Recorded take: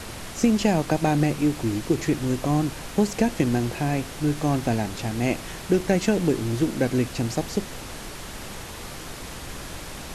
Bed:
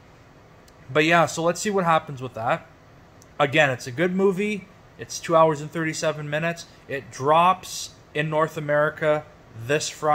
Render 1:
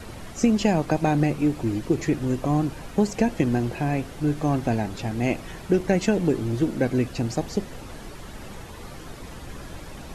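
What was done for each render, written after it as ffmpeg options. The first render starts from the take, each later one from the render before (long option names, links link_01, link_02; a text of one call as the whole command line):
ffmpeg -i in.wav -af "afftdn=noise_reduction=9:noise_floor=-38" out.wav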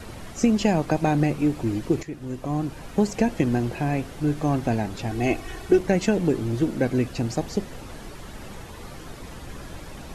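ffmpeg -i in.wav -filter_complex "[0:a]asettb=1/sr,asplit=3[link_01][link_02][link_03];[link_01]atrim=end=5.094[link_04];[link_02]atrim=start=5.09:end=5.79,asetpts=PTS-STARTPTS,afade=type=in:duration=0.004:curve=qsin,afade=type=out:start_time=0.696:duration=0.004:curve=qsin,aecho=1:1:2.7:0.65,atrim=end_sample=30870[link_05];[link_03]atrim=start=5.786[link_06];[link_04][link_05]acrossfade=duration=0.004:curve1=hsin:curve2=qsin[link_07];[link_07][link_06]acrossfade=duration=0.004:curve1=qsin:curve2=hsin,asplit=2[link_08][link_09];[link_08]atrim=end=2.03,asetpts=PTS-STARTPTS,afade=type=out:start_time=2.026:duration=0.004:curve=hsin:silence=0.199526[link_10];[link_09]atrim=start=2.03,asetpts=PTS-STARTPTS,afade=type=in:duration=0.96:silence=0.199526[link_11];[link_10][link_11]concat=n=2:v=0:a=1" out.wav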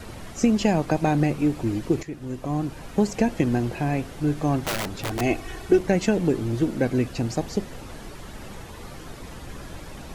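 ffmpeg -i in.wav -filter_complex "[0:a]asettb=1/sr,asplit=3[link_01][link_02][link_03];[link_01]atrim=end=4.634[link_04];[link_02]atrim=start=4.63:end=5.21,asetpts=PTS-STARTPTS,afade=type=in:duration=0.004:curve=qsin,afade=type=out:start_time=0.576:duration=0.004:curve=qsin,aeval=exprs='(mod(11.2*val(0)+1,2)-1)/11.2':channel_layout=same[link_05];[link_03]atrim=start=5.206[link_06];[link_04][link_05]acrossfade=duration=0.004:curve1=hsin:curve2=qsin[link_07];[link_07][link_06]acrossfade=duration=0.004:curve1=qsin:curve2=hsin" out.wav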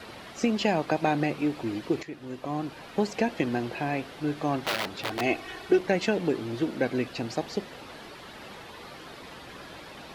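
ffmpeg -i in.wav -af "highpass=frequency=440:poles=1,highshelf=frequency=5400:width_type=q:width=1.5:gain=-7" out.wav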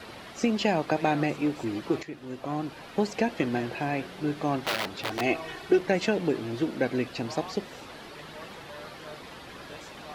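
ffmpeg -i in.wav -i bed.wav -filter_complex "[1:a]volume=-25dB[link_01];[0:a][link_01]amix=inputs=2:normalize=0" out.wav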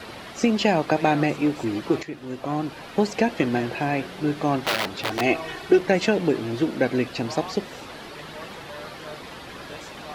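ffmpeg -i in.wav -af "volume=5dB" out.wav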